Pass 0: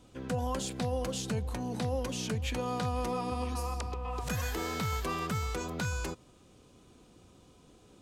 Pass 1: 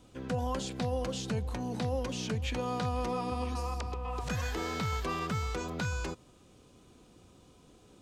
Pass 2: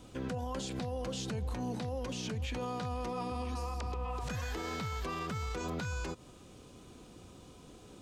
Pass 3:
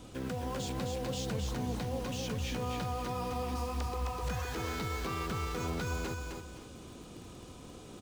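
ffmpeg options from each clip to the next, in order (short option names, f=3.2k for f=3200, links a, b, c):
-filter_complex "[0:a]acrossover=split=7100[a][b];[b]acompressor=threshold=-59dB:ratio=4:attack=1:release=60[c];[a][c]amix=inputs=2:normalize=0"
-af "alimiter=level_in=10.5dB:limit=-24dB:level=0:latency=1:release=116,volume=-10.5dB,volume=5dB"
-filter_complex "[0:a]asplit=2[a][b];[b]aeval=exprs='(mod(158*val(0)+1,2)-1)/158':c=same,volume=-7dB[c];[a][c]amix=inputs=2:normalize=0,aecho=1:1:262|524|786|1048:0.631|0.196|0.0606|0.0188"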